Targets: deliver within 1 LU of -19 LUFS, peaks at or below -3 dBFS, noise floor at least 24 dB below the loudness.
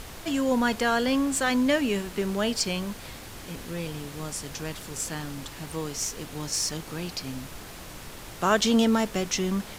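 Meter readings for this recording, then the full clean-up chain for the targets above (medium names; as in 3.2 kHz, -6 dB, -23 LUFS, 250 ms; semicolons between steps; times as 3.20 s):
noise floor -42 dBFS; noise floor target -52 dBFS; loudness -27.5 LUFS; peak level -10.0 dBFS; loudness target -19.0 LUFS
-> noise print and reduce 10 dB; trim +8.5 dB; peak limiter -3 dBFS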